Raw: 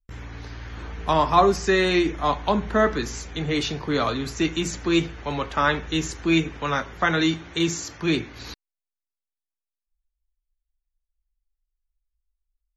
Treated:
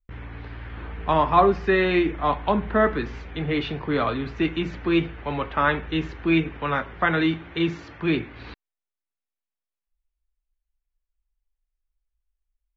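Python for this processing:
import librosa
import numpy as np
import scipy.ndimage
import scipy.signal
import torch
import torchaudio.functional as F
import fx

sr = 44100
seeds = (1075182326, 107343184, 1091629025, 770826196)

y = scipy.signal.sosfilt(scipy.signal.butter(4, 3100.0, 'lowpass', fs=sr, output='sos'), x)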